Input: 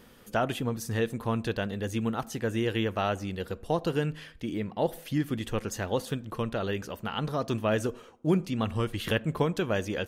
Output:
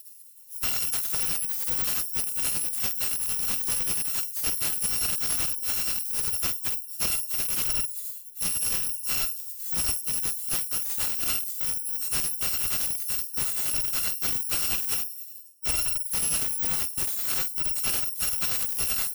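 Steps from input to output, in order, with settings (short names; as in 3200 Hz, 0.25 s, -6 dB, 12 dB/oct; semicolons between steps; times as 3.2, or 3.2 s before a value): FFT order left unsorted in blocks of 256 samples; high shelf 4700 Hz +8.5 dB; sample leveller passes 2; compressor 16:1, threshold -20 dBFS, peak gain reduction 11.5 dB; AM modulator 20 Hz, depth 50%; plain phase-vocoder stretch 1.9×; pre-emphasis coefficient 0.97; flutter echo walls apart 8.4 m, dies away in 0.38 s; slew limiter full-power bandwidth 780 Hz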